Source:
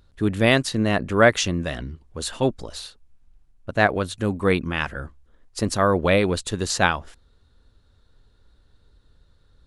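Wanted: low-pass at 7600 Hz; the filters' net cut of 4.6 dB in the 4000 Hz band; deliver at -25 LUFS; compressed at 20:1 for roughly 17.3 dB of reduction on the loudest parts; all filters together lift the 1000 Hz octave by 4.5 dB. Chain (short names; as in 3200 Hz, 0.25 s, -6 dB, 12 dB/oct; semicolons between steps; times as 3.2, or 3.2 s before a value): LPF 7600 Hz; bell 1000 Hz +6.5 dB; bell 4000 Hz -6 dB; compressor 20:1, threshold -25 dBFS; gain +7 dB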